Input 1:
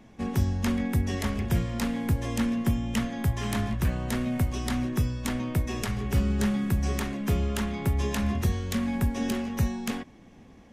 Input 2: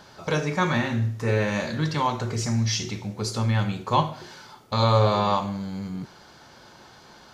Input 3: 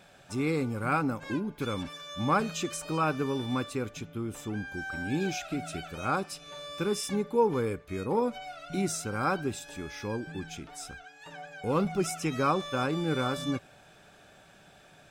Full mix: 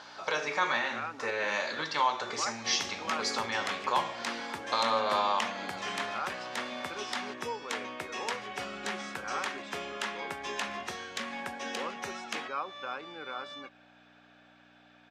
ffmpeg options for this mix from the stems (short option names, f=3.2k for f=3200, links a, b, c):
-filter_complex "[0:a]adelay=2450,volume=1.5dB[a];[1:a]volume=3dB[b];[2:a]lowpass=4.3k,acompressor=threshold=-31dB:ratio=2,adelay=100,volume=-1.5dB[c];[b][c]amix=inputs=2:normalize=0,aeval=exprs='val(0)+0.0158*(sin(2*PI*60*n/s)+sin(2*PI*2*60*n/s)/2+sin(2*PI*3*60*n/s)/3+sin(2*PI*4*60*n/s)/4+sin(2*PI*5*60*n/s)/5)':c=same,alimiter=limit=-14.5dB:level=0:latency=1:release=284,volume=0dB[d];[a][d]amix=inputs=2:normalize=0,highpass=700,lowpass=5.5k"